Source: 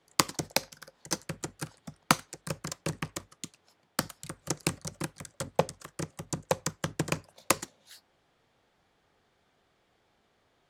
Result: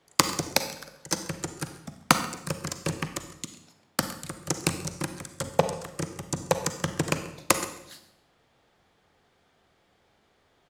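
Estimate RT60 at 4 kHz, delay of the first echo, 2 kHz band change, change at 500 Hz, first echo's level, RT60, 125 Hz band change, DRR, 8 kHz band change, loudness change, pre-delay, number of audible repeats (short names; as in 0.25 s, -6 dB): 0.65 s, 0.135 s, +4.0 dB, +4.5 dB, -19.0 dB, 0.80 s, +4.0 dB, 8.5 dB, +4.0 dB, +4.0 dB, 36 ms, 1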